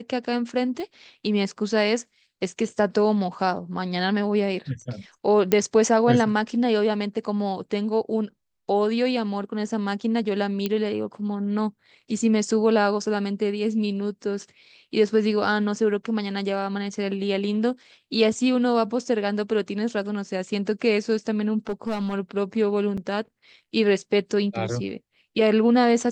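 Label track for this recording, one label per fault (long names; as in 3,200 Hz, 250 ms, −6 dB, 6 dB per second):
0.800000	0.800000	click −22 dBFS
5.520000	5.520000	click −7 dBFS
10.660000	10.660000	click −12 dBFS
21.690000	22.140000	clipping −22.5 dBFS
22.970000	22.980000	drop-out 5.8 ms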